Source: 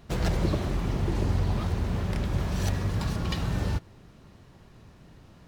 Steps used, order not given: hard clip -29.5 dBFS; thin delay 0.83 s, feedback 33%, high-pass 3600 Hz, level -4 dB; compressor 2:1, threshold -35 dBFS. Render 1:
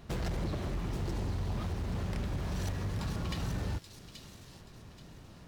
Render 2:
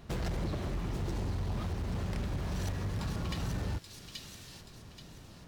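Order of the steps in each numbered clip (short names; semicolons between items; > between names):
compressor > hard clip > thin delay; thin delay > compressor > hard clip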